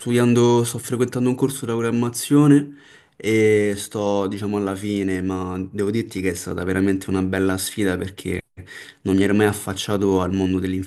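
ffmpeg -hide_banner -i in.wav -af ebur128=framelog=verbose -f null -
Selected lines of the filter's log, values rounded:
Integrated loudness:
  I:         -20.7 LUFS
  Threshold: -31.0 LUFS
Loudness range:
  LRA:         3.9 LU
  Threshold: -41.4 LUFS
  LRA low:   -23.4 LUFS
  LRA high:  -19.6 LUFS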